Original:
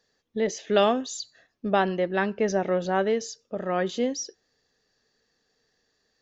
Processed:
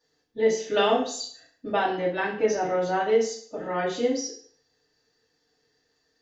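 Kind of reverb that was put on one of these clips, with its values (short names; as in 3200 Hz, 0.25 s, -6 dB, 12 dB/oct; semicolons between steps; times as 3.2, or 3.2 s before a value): FDN reverb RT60 0.53 s, low-frequency decay 0.9×, high-frequency decay 0.9×, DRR -9.5 dB; gain -9 dB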